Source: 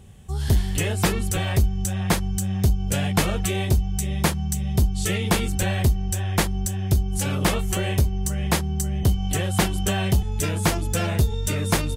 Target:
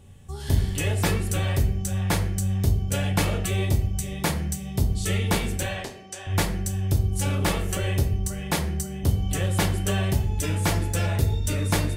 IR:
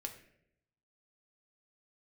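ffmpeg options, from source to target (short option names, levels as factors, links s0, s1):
-filter_complex "[0:a]asettb=1/sr,asplit=3[s0][s1][s2];[s0]atrim=end=5.634[s3];[s1]atrim=start=5.63:end=6.27,asetpts=PTS-STARTPTS,afade=t=in:d=0.004:c=qsin,afade=t=out:st=0.636:d=0.004:c=qsin,highpass=450,lowpass=6900[s4];[s2]atrim=start=6.266[s5];[s3][s4]acrossfade=d=0.004:c1=hsin:c2=qsin[s6];[s6][s5]acrossfade=d=0.004:c1=qsin:c2=hsin[s7];[1:a]atrim=start_sample=2205,afade=t=out:st=0.33:d=0.01,atrim=end_sample=14994[s8];[s7][s8]afir=irnorm=-1:irlink=0"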